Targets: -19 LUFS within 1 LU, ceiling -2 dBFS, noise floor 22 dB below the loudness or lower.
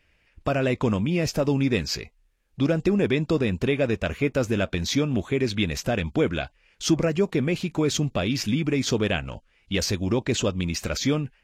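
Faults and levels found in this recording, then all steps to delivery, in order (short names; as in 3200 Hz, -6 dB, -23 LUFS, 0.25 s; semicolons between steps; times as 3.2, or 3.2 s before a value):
loudness -25.0 LUFS; peak -10.0 dBFS; loudness target -19.0 LUFS
-> gain +6 dB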